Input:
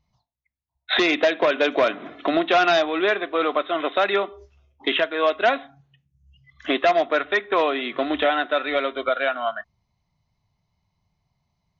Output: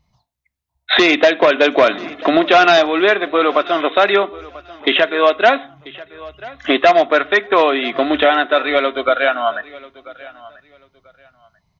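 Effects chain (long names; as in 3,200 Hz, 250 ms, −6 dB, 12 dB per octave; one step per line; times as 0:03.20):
repeating echo 989 ms, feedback 22%, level −20.5 dB
level +7.5 dB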